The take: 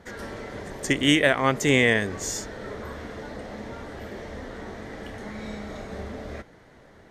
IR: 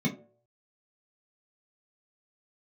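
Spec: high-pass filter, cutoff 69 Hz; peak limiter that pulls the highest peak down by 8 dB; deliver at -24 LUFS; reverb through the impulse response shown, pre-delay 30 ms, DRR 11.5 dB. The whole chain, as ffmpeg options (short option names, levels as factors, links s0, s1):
-filter_complex "[0:a]highpass=69,alimiter=limit=0.211:level=0:latency=1,asplit=2[s0][s1];[1:a]atrim=start_sample=2205,adelay=30[s2];[s1][s2]afir=irnorm=-1:irlink=0,volume=0.112[s3];[s0][s3]amix=inputs=2:normalize=0,volume=1.78"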